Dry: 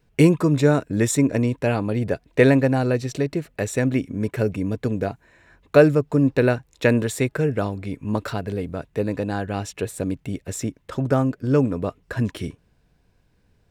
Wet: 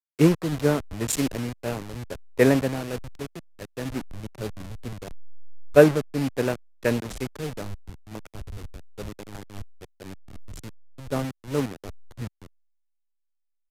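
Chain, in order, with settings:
hold until the input has moved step −19.5 dBFS
downsampling to 32,000 Hz
multiband upward and downward expander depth 100%
level −8.5 dB

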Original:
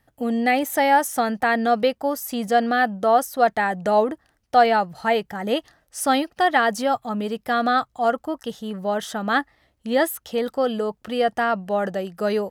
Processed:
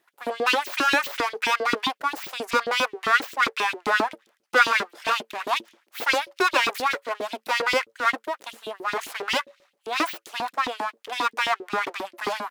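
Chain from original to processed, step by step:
full-wave rectification
hum removal 111.6 Hz, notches 5
auto-filter high-pass saw up 7.5 Hz 270–4,000 Hz

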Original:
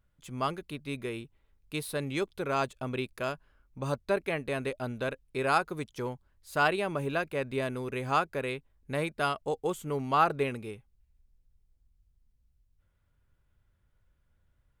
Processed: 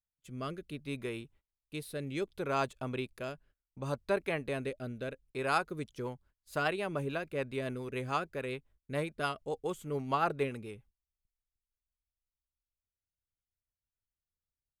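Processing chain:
rotating-speaker cabinet horn 0.65 Hz, later 7 Hz, at 0:05.35
noise gate −59 dBFS, range −24 dB
level −2 dB

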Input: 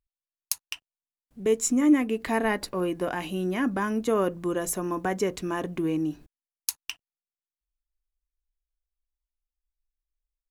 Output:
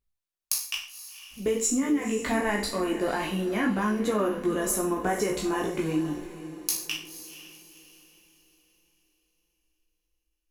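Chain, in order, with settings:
peak hold with a decay on every bin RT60 0.43 s
multi-voice chorus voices 6, 0.99 Hz, delay 17 ms, depth 3 ms
downward compressor, threshold −26 dBFS, peak gain reduction 10.5 dB
feedback delay with all-pass diffusion 496 ms, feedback 40%, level −13 dB
level +4 dB

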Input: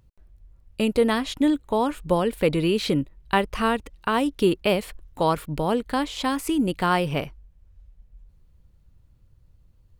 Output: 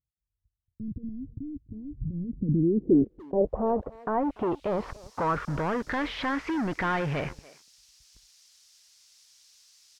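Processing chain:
noise gate −44 dBFS, range −26 dB
high-pass filter 40 Hz 12 dB per octave
leveller curve on the samples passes 5
brickwall limiter −26 dBFS, peak gain reduction 19.5 dB
low-pass filter sweep 300 Hz → 1,800 Hz, 0:02.38–0:05.89
background noise violet −50 dBFS
low-pass filter sweep 110 Hz → 5,300 Hz, 0:02.09–0:04.91
far-end echo of a speakerphone 290 ms, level −20 dB

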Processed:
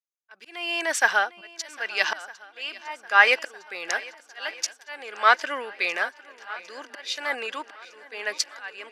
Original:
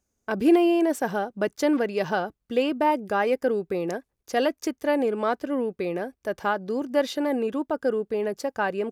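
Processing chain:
in parallel at −1 dB: speech leveller 2 s
on the sum: low-pass filter 5,300 Hz 12 dB per octave
noise gate −34 dBFS, range −19 dB
high-shelf EQ 3,400 Hz +8.5 dB
volume swells 481 ms
high-pass filter 1,400 Hz 12 dB per octave
parametric band 1,800 Hz +4 dB 1.1 octaves
on a send: feedback echo with a long and a short gap by turns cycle 1,258 ms, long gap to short 1.5 to 1, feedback 61%, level −17 dB
on the sum: multiband upward and downward expander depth 40%
level +4.5 dB

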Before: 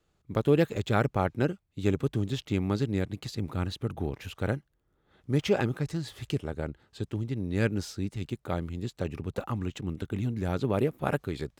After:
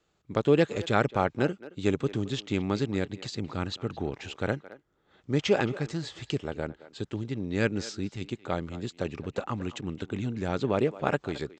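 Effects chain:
elliptic low-pass filter 7,600 Hz, stop band 40 dB
low-shelf EQ 120 Hz −11 dB
far-end echo of a speakerphone 220 ms, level −16 dB
level +3.5 dB

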